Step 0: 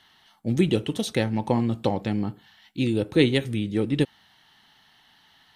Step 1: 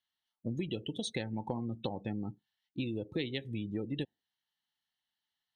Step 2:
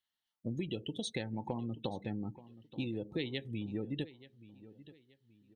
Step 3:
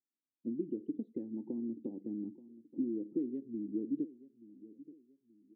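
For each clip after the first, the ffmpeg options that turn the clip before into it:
-af "afftdn=nr=31:nf=-33,highshelf=f=2.9k:g=10.5,acompressor=threshold=-28dB:ratio=6,volume=-5dB"
-filter_complex "[0:a]asplit=2[a][b];[b]adelay=879,lowpass=f=4.6k:p=1,volume=-17.5dB,asplit=2[c][d];[d]adelay=879,lowpass=f=4.6k:p=1,volume=0.35,asplit=2[e][f];[f]adelay=879,lowpass=f=4.6k:p=1,volume=0.35[g];[a][c][e][g]amix=inputs=4:normalize=0,volume=-1.5dB"
-af "asuperpass=centerf=290:order=4:qfactor=2.3,volume=5.5dB"

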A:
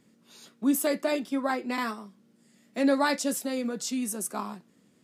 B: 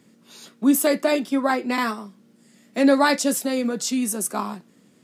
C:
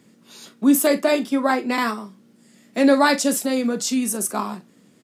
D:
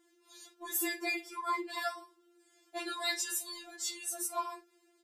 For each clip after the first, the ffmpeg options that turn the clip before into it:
-af "highpass=90,volume=7dB"
-filter_complex "[0:a]asplit=2[a][b];[b]adelay=42,volume=-14dB[c];[a][c]amix=inputs=2:normalize=0,volume=1.5dB"
-af "afftfilt=real='re*4*eq(mod(b,16),0)':imag='im*4*eq(mod(b,16),0)':win_size=2048:overlap=0.75,volume=-8dB"

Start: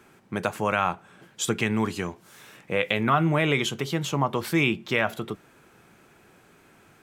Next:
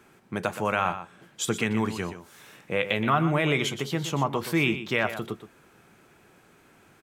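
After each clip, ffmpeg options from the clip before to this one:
-af "aecho=1:1:122:0.266,volume=-1.5dB"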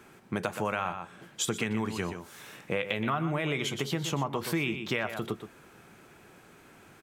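-af "acompressor=threshold=-30dB:ratio=4,volume=2.5dB"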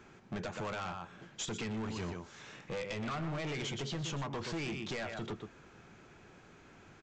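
-af "lowshelf=f=95:g=9,aresample=16000,volume=31.5dB,asoftclip=hard,volume=-31.5dB,aresample=44100,volume=-3.5dB"

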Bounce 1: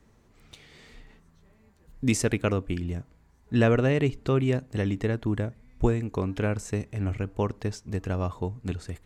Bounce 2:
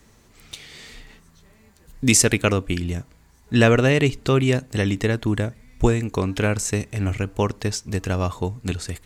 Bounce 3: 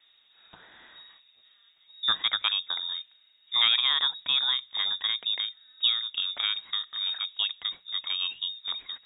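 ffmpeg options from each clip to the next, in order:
-af "highshelf=f=2.3k:g=11,volume=5dB"
-af "lowpass=f=3.2k:t=q:w=0.5098,lowpass=f=3.2k:t=q:w=0.6013,lowpass=f=3.2k:t=q:w=0.9,lowpass=f=3.2k:t=q:w=2.563,afreqshift=-3800,bandreject=f=60:t=h:w=6,bandreject=f=120:t=h:w=6,bandreject=f=180:t=h:w=6,volume=-8dB"

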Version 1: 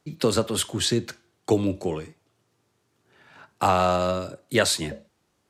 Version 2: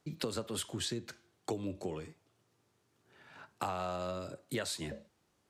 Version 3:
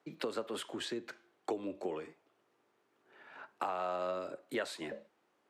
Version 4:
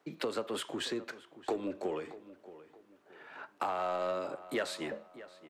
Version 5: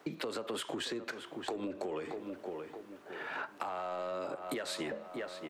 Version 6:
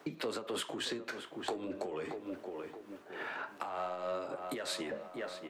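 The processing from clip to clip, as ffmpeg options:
-af "acompressor=threshold=-31dB:ratio=4,volume=-4.5dB"
-filter_complex "[0:a]acrossover=split=240 2900:gain=0.1 1 0.224[a][b][c];[a][b][c]amix=inputs=3:normalize=0,asplit=2[d][e];[e]alimiter=level_in=4.5dB:limit=-24dB:level=0:latency=1:release=475,volume=-4.5dB,volume=0dB[f];[d][f]amix=inputs=2:normalize=0,lowshelf=f=140:g=-5.5,volume=-2.5dB"
-filter_complex "[0:a]asplit=2[a][b];[b]volume=36dB,asoftclip=hard,volume=-36dB,volume=-5.5dB[c];[a][c]amix=inputs=2:normalize=0,asplit=2[d][e];[e]adelay=625,lowpass=f=3.1k:p=1,volume=-16dB,asplit=2[f][g];[g]adelay=625,lowpass=f=3.1k:p=1,volume=0.34,asplit=2[h][i];[i]adelay=625,lowpass=f=3.1k:p=1,volume=0.34[j];[d][f][h][j]amix=inputs=4:normalize=0"
-af "alimiter=level_in=7.5dB:limit=-24dB:level=0:latency=1:release=126,volume=-7.5dB,acompressor=threshold=-47dB:ratio=6,volume=11.5dB"
-af "flanger=delay=7.2:depth=9:regen=-63:speed=0.45:shape=sinusoidal,tremolo=f=3.4:d=0.43,volume=6dB"

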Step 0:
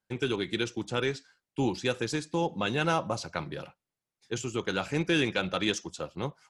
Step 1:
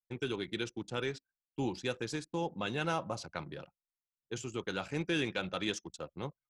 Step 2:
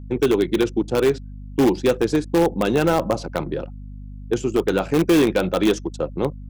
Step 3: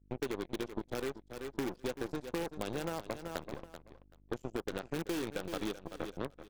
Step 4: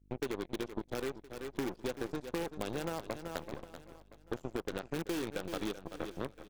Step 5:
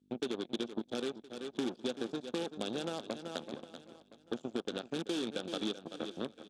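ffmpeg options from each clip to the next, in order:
-af "anlmdn=0.0631,volume=-6.5dB"
-filter_complex "[0:a]equalizer=f=370:w=0.45:g=14,aeval=exprs='val(0)+0.00891*(sin(2*PI*50*n/s)+sin(2*PI*2*50*n/s)/2+sin(2*PI*3*50*n/s)/3+sin(2*PI*4*50*n/s)/4+sin(2*PI*5*50*n/s)/5)':c=same,asplit=2[a][b];[b]aeval=exprs='(mod(6.31*val(0)+1,2)-1)/6.31':c=same,volume=-11dB[c];[a][c]amix=inputs=2:normalize=0,volume=4.5dB"
-af "aeval=exprs='0.473*(cos(1*acos(clip(val(0)/0.473,-1,1)))-cos(1*PI/2))+0.106*(cos(3*acos(clip(val(0)/0.473,-1,1)))-cos(3*PI/2))+0.00841*(cos(5*acos(clip(val(0)/0.473,-1,1)))-cos(5*PI/2))+0.0237*(cos(7*acos(clip(val(0)/0.473,-1,1)))-cos(7*PI/2))+0.015*(cos(8*acos(clip(val(0)/0.473,-1,1)))-cos(8*PI/2))':c=same,aecho=1:1:383|766:0.2|0.0339,acompressor=threshold=-26dB:ratio=6,volume=-7dB"
-af "aecho=1:1:1017:0.1"
-af "highpass=190,equalizer=f=230:t=q:w=4:g=8,equalizer=f=1k:t=q:w=4:g=-6,equalizer=f=2k:t=q:w=4:g=-9,equalizer=f=3.5k:t=q:w=4:g=10,lowpass=f=9.2k:w=0.5412,lowpass=f=9.2k:w=1.3066"

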